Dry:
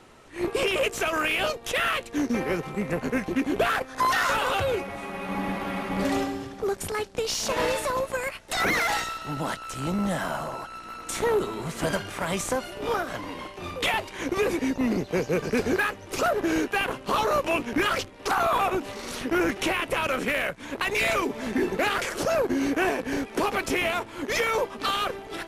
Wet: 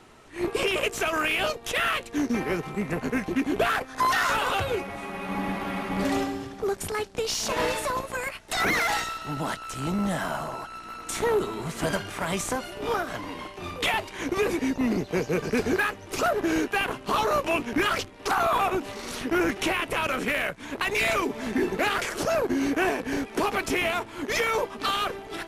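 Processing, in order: notch 530 Hz, Q 12

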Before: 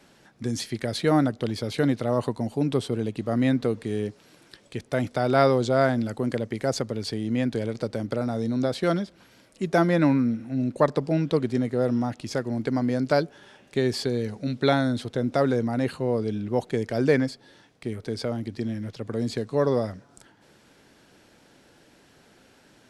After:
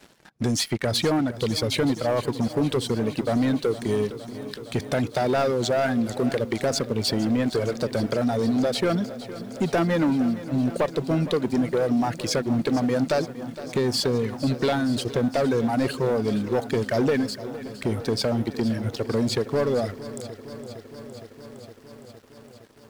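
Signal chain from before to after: reverb removal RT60 2 s; compressor 3:1, threshold -29 dBFS, peak gain reduction 11.5 dB; sample leveller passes 3; lo-fi delay 0.462 s, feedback 80%, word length 8-bit, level -15 dB

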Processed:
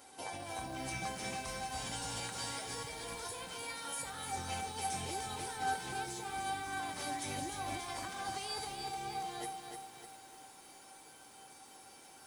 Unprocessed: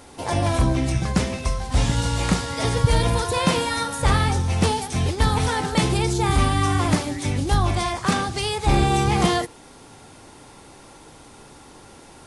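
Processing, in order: HPF 360 Hz 6 dB/oct; high shelf 9300 Hz +8.5 dB; negative-ratio compressor -29 dBFS, ratio -1; resonator 780 Hz, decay 0.34 s, mix 90%; lo-fi delay 0.301 s, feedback 55%, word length 10-bit, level -5 dB; gain +2.5 dB

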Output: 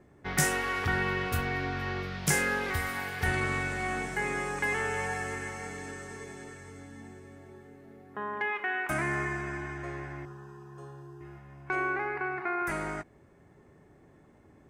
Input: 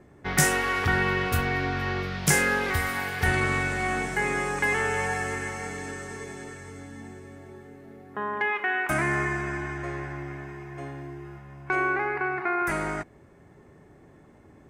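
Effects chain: 10.25–11.21 fixed phaser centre 430 Hz, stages 8; ending taper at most 520 dB/s; gain -5 dB

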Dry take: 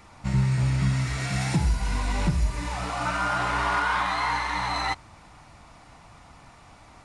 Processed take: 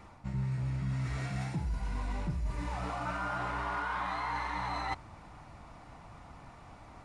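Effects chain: high shelf 2200 Hz -10 dB; reverse; compressor 4:1, threshold -33 dBFS, peak gain reduction 12.5 dB; reverse

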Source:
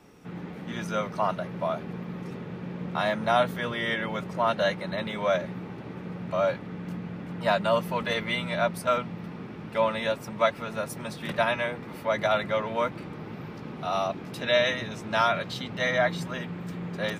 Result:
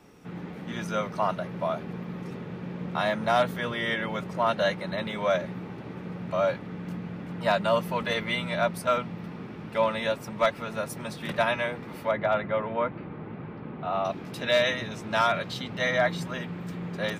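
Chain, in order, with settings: 12.11–14.05 Gaussian blur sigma 3 samples; overloaded stage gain 14.5 dB

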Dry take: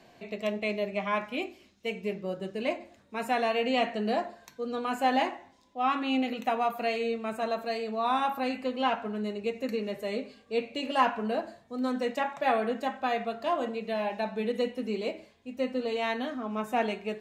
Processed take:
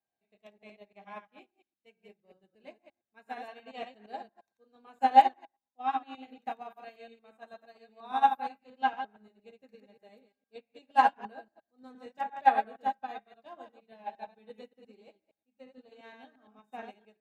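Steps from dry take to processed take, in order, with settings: reverse delay 0.116 s, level -3 dB; small resonant body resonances 810/1600/3700 Hz, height 14 dB, ringing for 80 ms; upward expander 2.5:1, over -38 dBFS

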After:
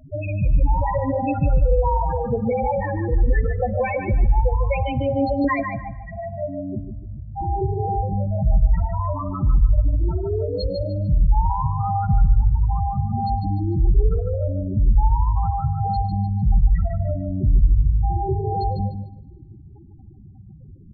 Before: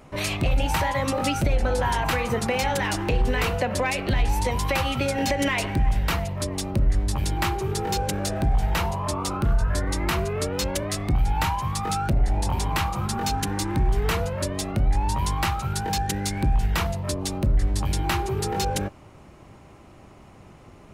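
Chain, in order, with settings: in parallel at +0.5 dB: compressor 20:1, threshold -29 dBFS, peak gain reduction 14.5 dB; on the sum: companded quantiser 6-bit; loudest bins only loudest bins 4; 5.44–7.41 speaker cabinet 170–2200 Hz, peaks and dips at 170 Hz -10 dB, 240 Hz +5 dB, 490 Hz +9 dB, 1000 Hz +9 dB, 1500 Hz +6 dB; on a send: feedback echo 0.149 s, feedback 26%, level -6.5 dB; on the sum: spring tank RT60 1.4 s, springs 50 ms, chirp 55 ms, DRR 19 dB; gain +2.5 dB

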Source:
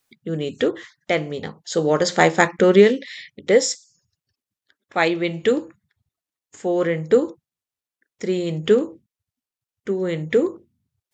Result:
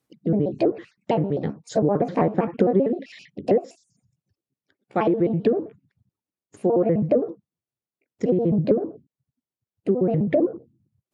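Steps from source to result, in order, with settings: trilling pitch shifter +5 st, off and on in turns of 65 ms; HPF 96 Hz; tilt shelf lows +9.5 dB, about 690 Hz; compressor 16:1, threshold -15 dBFS, peak gain reduction 13.5 dB; treble ducked by the level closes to 1300 Hz, closed at -16.5 dBFS

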